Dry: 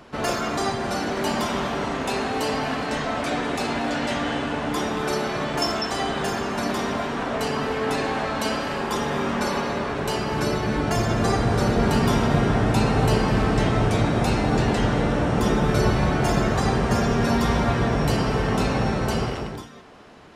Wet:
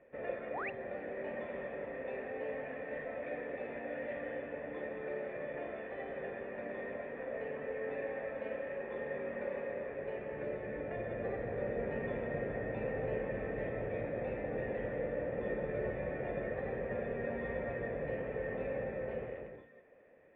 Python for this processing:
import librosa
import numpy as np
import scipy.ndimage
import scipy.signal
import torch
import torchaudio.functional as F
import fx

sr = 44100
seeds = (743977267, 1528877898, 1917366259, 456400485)

y = fx.formant_cascade(x, sr, vowel='e')
y = fx.spec_paint(y, sr, seeds[0], shape='rise', start_s=0.5, length_s=0.2, low_hz=440.0, high_hz=2900.0, level_db=-37.0)
y = y * 10.0 ** (-3.5 / 20.0)